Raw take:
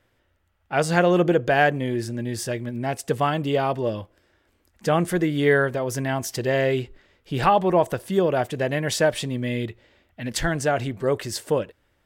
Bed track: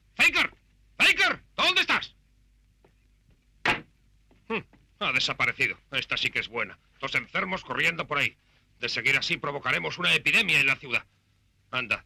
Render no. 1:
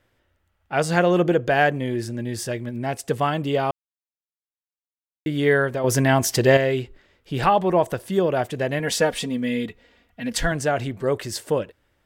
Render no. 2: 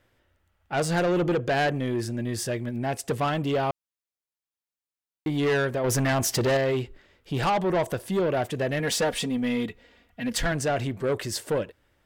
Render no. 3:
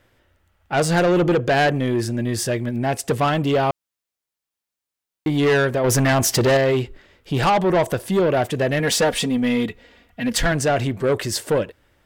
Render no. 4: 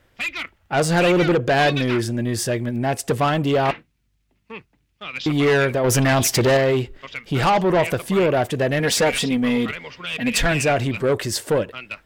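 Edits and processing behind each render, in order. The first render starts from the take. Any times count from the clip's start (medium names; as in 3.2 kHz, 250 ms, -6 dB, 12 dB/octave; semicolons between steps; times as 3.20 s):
3.71–5.26 s: mute; 5.84–6.57 s: gain +7.5 dB; 8.79–10.52 s: comb 4.2 ms
saturation -19.5 dBFS, distortion -9 dB
trim +6.5 dB
add bed track -6 dB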